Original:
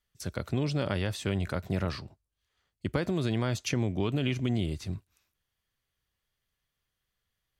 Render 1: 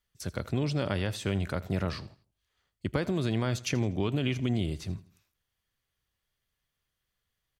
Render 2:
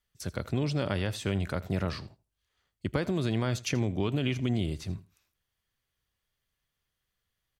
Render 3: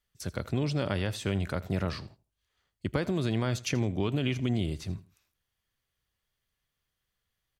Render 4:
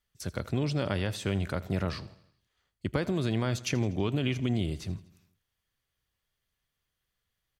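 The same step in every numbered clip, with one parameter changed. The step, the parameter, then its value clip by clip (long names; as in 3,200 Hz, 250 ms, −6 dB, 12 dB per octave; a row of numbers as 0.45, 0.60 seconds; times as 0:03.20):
repeating echo, feedback: 37, 15, 25, 55%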